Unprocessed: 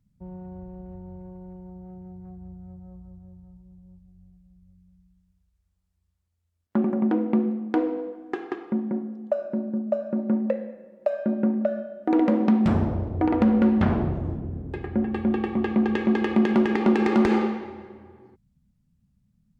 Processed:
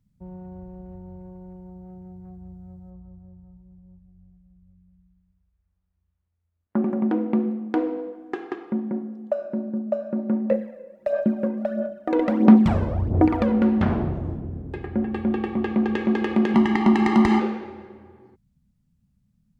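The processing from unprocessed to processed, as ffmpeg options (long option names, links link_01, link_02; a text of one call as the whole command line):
ffmpeg -i in.wav -filter_complex "[0:a]asettb=1/sr,asplit=3[link_01][link_02][link_03];[link_01]atrim=end=2.904[link_04];[link_02]atrim=start=2.9:end=6.84,asetpts=PTS-STARTPTS,afade=type=in:duration=0.004:curve=qsin,afade=type=out:start_time=3.936:duration=0.004:curve=qsin,lowpass=2100[link_05];[link_03]atrim=start=6.836[link_06];[link_04][link_05]acrossfade=duration=0.004:curve1=hsin:curve2=qsin[link_07];[link_07][link_06]acrossfade=duration=0.004:curve1=qsin:curve2=hsin,asettb=1/sr,asplit=3[link_08][link_09][link_10];[link_08]atrim=end=10.514[link_11];[link_09]atrim=start=10.51:end=13.52,asetpts=PTS-STARTPTS,afade=type=in:duration=0.004:curve=qsin,afade=type=out:start_time=3.006:duration=0.004:curve=qsin,aphaser=in_gain=1:out_gain=1:delay=2:decay=0.62:speed=1.5:type=sinusoidal[link_12];[link_10]atrim=start=13.516[link_13];[link_11][link_12]acrossfade=duration=0.004:curve1=hsin:curve2=qsin[link_14];[link_14][link_13]acrossfade=duration=0.004:curve1=qsin:curve2=hsin,asettb=1/sr,asplit=3[link_15][link_16][link_17];[link_15]atrim=end=16.544[link_18];[link_16]atrim=start=16.54:end=17.4,asetpts=PTS-STARTPTS,afade=type=in:duration=0.004:curve=qsin,afade=type=out:start_time=0.856:duration=0.004:curve=qsin,aecho=1:1:1:0.96,atrim=end_sample=37926[link_19];[link_17]atrim=start=17.396[link_20];[link_18][link_19]acrossfade=duration=0.004:curve1=hsin:curve2=qsin[link_21];[link_21][link_20]acrossfade=duration=0.004:curve1=qsin:curve2=hsin" out.wav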